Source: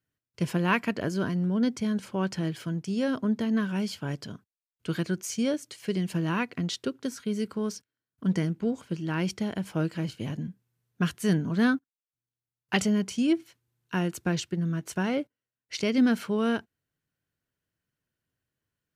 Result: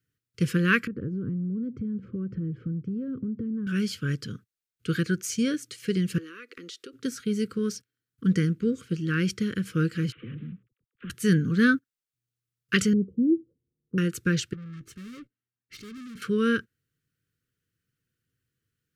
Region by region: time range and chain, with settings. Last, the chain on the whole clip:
0.87–3.67 Bessel low-pass 610 Hz + low shelf 340 Hz +8 dB + compressor 8:1, threshold -31 dBFS
6.18–6.93 Chebyshev high-pass 340 Hz, order 3 + compressor, threshold -41 dBFS
10.12–11.1 CVSD 16 kbps + compressor 12:1, threshold -37 dBFS + dispersion lows, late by 48 ms, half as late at 470 Hz
12.93–13.98 elliptic low-pass 720 Hz, stop band 60 dB + notches 60/120 Hz
14.53–16.22 high shelf 4100 Hz -11.5 dB + tube stage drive 42 dB, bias 0.55 + notch comb 490 Hz
whole clip: dynamic EQ 1600 Hz, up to +6 dB, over -51 dBFS, Q 3.8; elliptic band-stop 500–1200 Hz, stop band 40 dB; bell 120 Hz +5 dB 0.68 oct; gain +2.5 dB

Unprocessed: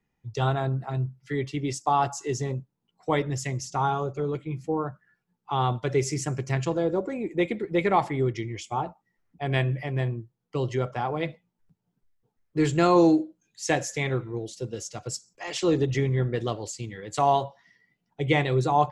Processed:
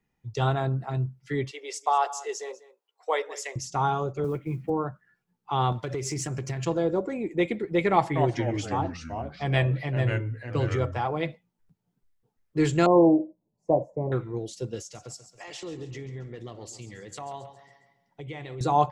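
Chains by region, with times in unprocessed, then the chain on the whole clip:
1.51–3.56 elliptic high-pass 440 Hz, stop band 80 dB + echo 0.194 s -18 dB
4.24–4.7 LPF 2500 Hz 24 dB/oct + companded quantiser 8-bit + three-band squash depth 70%
5.72–6.65 HPF 49 Hz + compressor 12:1, threshold -30 dBFS + sample leveller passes 1
7.92–11.08 comb 6.1 ms, depth 39% + echoes that change speed 0.236 s, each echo -3 st, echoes 3, each echo -6 dB
12.86–14.12 elliptic low-pass 1000 Hz + bell 600 Hz +10.5 dB 0.2 oct
14.81–18.61 compressor 3:1, threshold -40 dBFS + feedback echo 0.137 s, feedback 49%, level -13 dB
whole clip: dry

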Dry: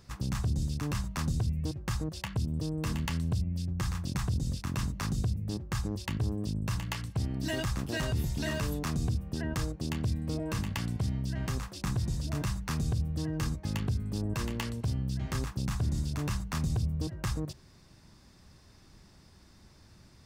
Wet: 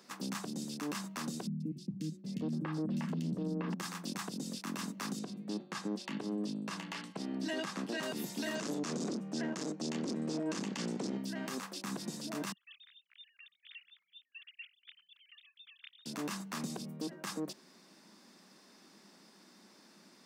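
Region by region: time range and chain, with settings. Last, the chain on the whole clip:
1.47–3.74 RIAA curve playback + three bands offset in time lows, highs, mids 0.13/0.77 s, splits 280/3500 Hz
5.19–8.03 air absorption 55 m + de-hum 122.3 Hz, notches 38
8.55–11.17 low shelf 170 Hz +12 dB + hard clip -23 dBFS + synth low-pass 6800 Hz, resonance Q 2.2
12.52–16.06 sine-wave speech + inverse Chebyshev high-pass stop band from 770 Hz, stop band 70 dB
whole clip: steep high-pass 190 Hz 48 dB/oct; limiter -29.5 dBFS; gain +1 dB

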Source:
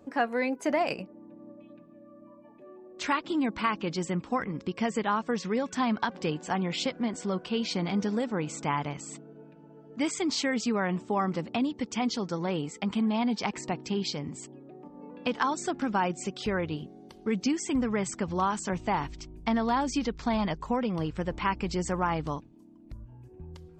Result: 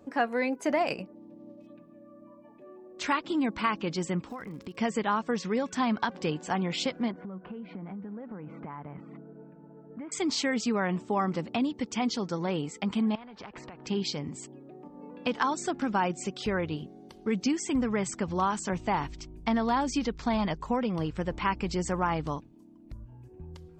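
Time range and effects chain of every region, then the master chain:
1.15–1.67 median filter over 15 samples + bell 1400 Hz -12 dB 0.59 oct
4.27–4.74 compressor, threshold -36 dBFS + crackle 110/s -47 dBFS
7.11–10.12 LPF 1800 Hz 24 dB/oct + bell 190 Hz +7.5 dB 0.23 oct + compressor 16:1, threshold -36 dBFS
13.15–13.87 LPF 1200 Hz + compressor 12:1, threshold -40 dBFS + spectral compressor 2:1
whole clip: dry

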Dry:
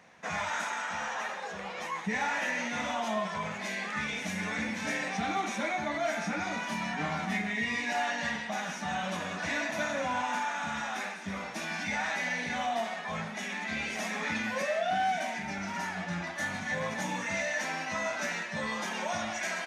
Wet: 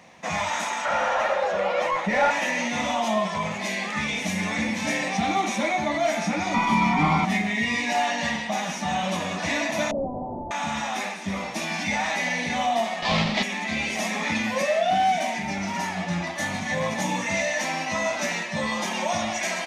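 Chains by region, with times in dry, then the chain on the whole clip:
0.85–2.31 overdrive pedal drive 12 dB, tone 1700 Hz, clips at -21.5 dBFS + small resonant body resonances 570/1400 Hz, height 14 dB, ringing for 35 ms
6.54–7.25 low shelf 410 Hz +4.5 dB + comb 0.9 ms, depth 93% + overdrive pedal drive 15 dB, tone 1100 Hz, clips at -16.5 dBFS
9.91–10.51 infinite clipping + steep low-pass 710 Hz
13.02–13.43 half-waves squared off + LPF 4300 Hz 24 dB/oct + high shelf 2500 Hz +11 dB
whole clip: bell 1500 Hz -11 dB 0.39 oct; notch 440 Hz, Q 12; gain +8.5 dB

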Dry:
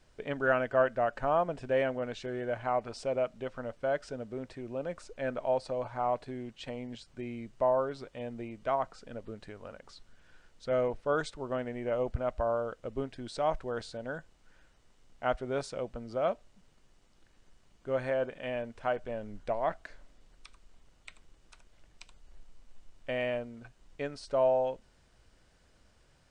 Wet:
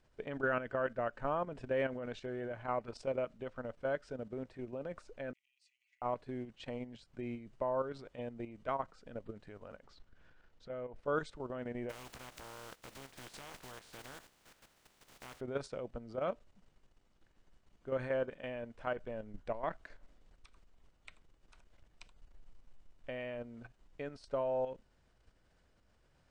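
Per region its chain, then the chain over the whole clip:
5.33–6.02 high shelf 4600 Hz -5 dB + compressor 3:1, threshold -39 dBFS + rippled Chebyshev high-pass 1900 Hz, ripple 9 dB
9.84–10.96 compressor 2:1, threshold -46 dBFS + air absorption 66 m
11.89–15.39 spectral contrast lowered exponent 0.25 + compressor 5:1, threshold -41 dBFS + doubler 15 ms -8.5 dB
whole clip: high shelf 3800 Hz -7.5 dB; level quantiser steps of 10 dB; dynamic EQ 710 Hz, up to -7 dB, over -46 dBFS, Q 3

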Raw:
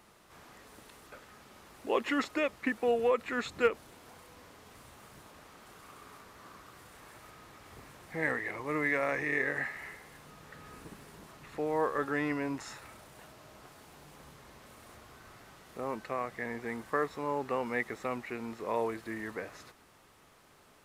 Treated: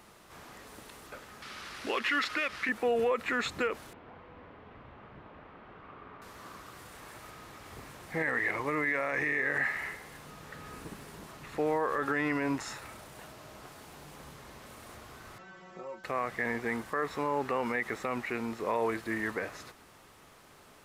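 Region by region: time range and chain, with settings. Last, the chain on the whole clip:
1.42–2.69 CVSD 64 kbps + band shelf 2600 Hz +10 dB 2.5 oct + compressor 1.5:1, threshold -38 dBFS
3.93–6.22 LPF 3100 Hz 24 dB/oct + high shelf 2300 Hz -9 dB
15.38–16.04 brick-wall FIR low-pass 8000 Hz + metallic resonator 180 Hz, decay 0.24 s, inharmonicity 0.002 + three-band squash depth 70%
whole clip: dynamic EQ 1700 Hz, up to +4 dB, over -44 dBFS, Q 0.79; limiter -25 dBFS; gain +4.5 dB

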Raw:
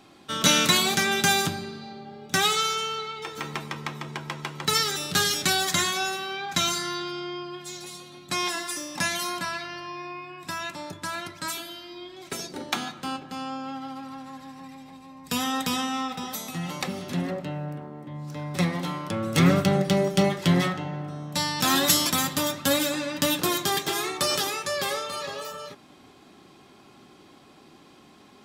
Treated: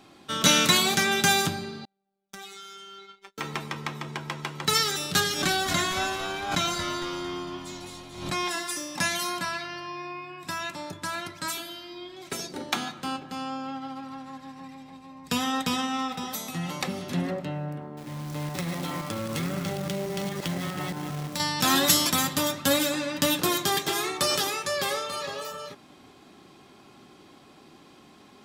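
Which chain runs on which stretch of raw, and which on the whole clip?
1.85–3.38 gate -35 dBFS, range -39 dB + compressor 4:1, threshold -41 dBFS + robotiser 196 Hz
5.2–8.51 high shelf 3500 Hz -7 dB + frequency-shifting echo 0.227 s, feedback 55%, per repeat -84 Hz, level -9.5 dB + backwards sustainer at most 76 dB/s
13.67–15.99 bell 14000 Hz -6.5 dB 1.2 oct + transient shaper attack +2 dB, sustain -4 dB
17.97–21.4 reverse delay 0.174 s, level -5.5 dB + companded quantiser 4-bit + compressor, threshold -27 dBFS
whole clip: dry

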